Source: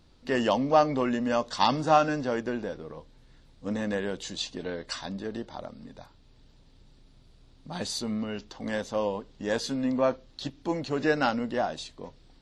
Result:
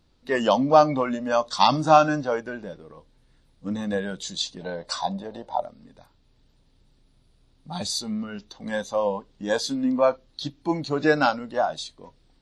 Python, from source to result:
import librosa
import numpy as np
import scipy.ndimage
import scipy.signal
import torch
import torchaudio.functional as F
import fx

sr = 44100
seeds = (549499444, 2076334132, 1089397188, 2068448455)

y = fx.noise_reduce_blind(x, sr, reduce_db=10)
y = fx.band_shelf(y, sr, hz=710.0, db=11.0, octaves=1.2, at=(4.61, 5.62))
y = F.gain(torch.from_numpy(y), 5.5).numpy()